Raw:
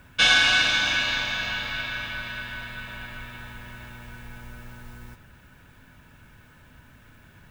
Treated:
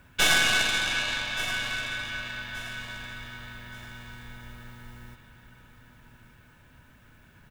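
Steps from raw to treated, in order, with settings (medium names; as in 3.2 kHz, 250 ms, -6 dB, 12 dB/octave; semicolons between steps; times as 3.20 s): tracing distortion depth 0.11 ms; feedback delay 1175 ms, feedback 34%, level -13 dB; trim -4 dB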